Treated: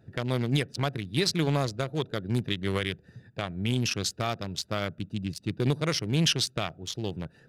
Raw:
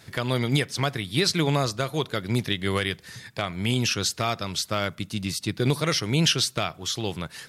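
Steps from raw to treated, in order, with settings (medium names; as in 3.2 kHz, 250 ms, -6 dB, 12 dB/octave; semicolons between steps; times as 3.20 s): local Wiener filter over 41 samples; in parallel at -10 dB: saturation -19.5 dBFS, distortion -13 dB; on the sum: trim -4 dB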